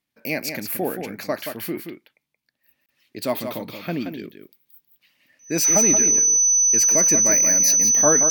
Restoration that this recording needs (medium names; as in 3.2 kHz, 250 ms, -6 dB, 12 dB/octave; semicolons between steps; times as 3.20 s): band-stop 6 kHz, Q 30; interpolate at 2.86 s, 27 ms; inverse comb 176 ms -7.5 dB